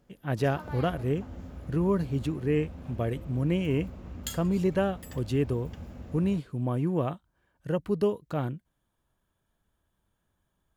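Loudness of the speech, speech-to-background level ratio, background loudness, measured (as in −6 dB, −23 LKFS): −29.5 LKFS, 13.5 dB, −43.0 LKFS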